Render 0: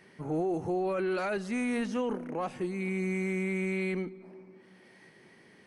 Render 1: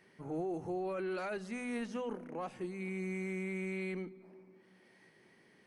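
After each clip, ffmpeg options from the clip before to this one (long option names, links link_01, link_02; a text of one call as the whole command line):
ffmpeg -i in.wav -af "bandreject=frequency=50:width_type=h:width=6,bandreject=frequency=100:width_type=h:width=6,bandreject=frequency=150:width_type=h:width=6,bandreject=frequency=200:width_type=h:width=6,bandreject=frequency=250:width_type=h:width=6,volume=-7dB" out.wav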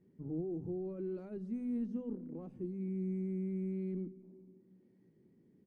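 ffmpeg -i in.wav -af "firequalizer=gain_entry='entry(260,0);entry(680,-21);entry(1700,-29)':delay=0.05:min_phase=1,volume=3.5dB" out.wav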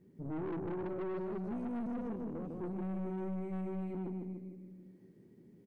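ffmpeg -i in.wav -af "aecho=1:1:152|304|456|608|760|912|1064:0.631|0.341|0.184|0.0994|0.0537|0.029|0.0156,aeval=exprs='(tanh(126*val(0)+0.35)-tanh(0.35))/126':channel_layout=same,volume=6dB" out.wav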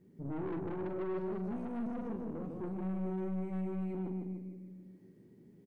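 ffmpeg -i in.wav -filter_complex "[0:a]asplit=2[link_01][link_02];[link_02]adelay=43,volume=-9dB[link_03];[link_01][link_03]amix=inputs=2:normalize=0" out.wav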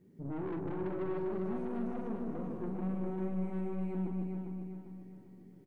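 ffmpeg -i in.wav -af "aecho=1:1:400|800|1200|1600|2000:0.501|0.221|0.097|0.0427|0.0188" out.wav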